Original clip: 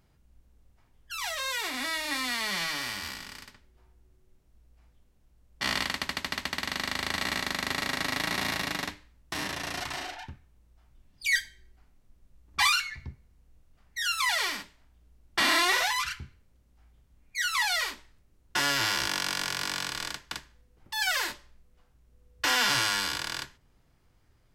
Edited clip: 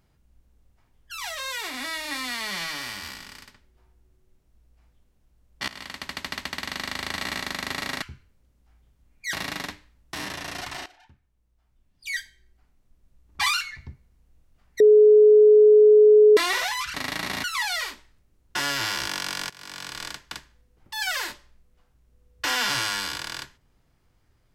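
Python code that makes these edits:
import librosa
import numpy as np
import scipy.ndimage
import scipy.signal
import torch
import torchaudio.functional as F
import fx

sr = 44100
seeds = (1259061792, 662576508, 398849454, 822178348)

y = fx.edit(x, sr, fx.fade_in_from(start_s=5.68, length_s=0.56, floor_db=-18.5),
    fx.swap(start_s=8.02, length_s=0.5, other_s=16.13, other_length_s=1.31),
    fx.fade_in_from(start_s=10.05, length_s=2.6, floor_db=-16.5),
    fx.bleep(start_s=13.99, length_s=1.57, hz=424.0, db=-10.0),
    fx.fade_in_from(start_s=19.5, length_s=0.55, floor_db=-22.5), tone=tone)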